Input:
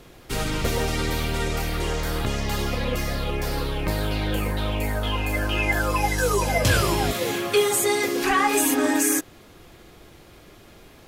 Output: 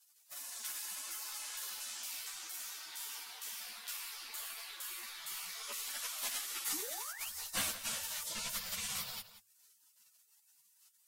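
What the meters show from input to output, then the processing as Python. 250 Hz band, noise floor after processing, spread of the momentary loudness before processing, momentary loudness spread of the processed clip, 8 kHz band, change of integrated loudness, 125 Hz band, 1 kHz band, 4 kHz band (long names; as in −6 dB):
−33.0 dB, −70 dBFS, 7 LU, 7 LU, −10.5 dB, −16.0 dB, −36.5 dB, −24.0 dB, −11.5 dB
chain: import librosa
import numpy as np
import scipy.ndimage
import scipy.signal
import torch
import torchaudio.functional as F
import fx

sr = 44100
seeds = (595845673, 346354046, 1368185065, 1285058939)

p1 = fx.spec_gate(x, sr, threshold_db=-30, keep='weak')
p2 = fx.hum_notches(p1, sr, base_hz=50, count=3)
p3 = fx.spec_paint(p2, sr, seeds[0], shape='rise', start_s=6.72, length_s=0.58, low_hz=270.0, high_hz=3400.0, level_db=-48.0)
p4 = p3 + fx.echo_single(p3, sr, ms=177, db=-13.5, dry=0)
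p5 = fx.ensemble(p4, sr)
y = p5 * librosa.db_to_amplitude(1.5)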